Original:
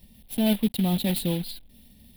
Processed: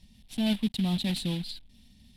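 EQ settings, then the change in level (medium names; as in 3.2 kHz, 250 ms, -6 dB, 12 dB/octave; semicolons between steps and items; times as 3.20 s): resonant low-pass 6.5 kHz, resonance Q 1.8; peaking EQ 490 Hz -9 dB 1.1 oct; -2.5 dB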